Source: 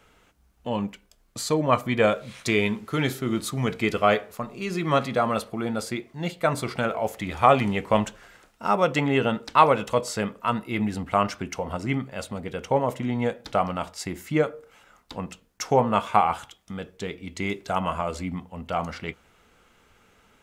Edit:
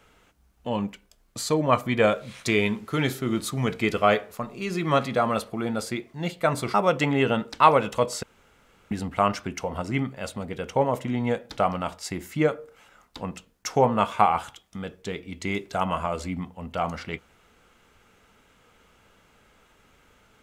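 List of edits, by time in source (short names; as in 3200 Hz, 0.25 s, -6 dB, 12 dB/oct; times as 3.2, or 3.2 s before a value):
6.74–8.69 cut
10.18–10.86 room tone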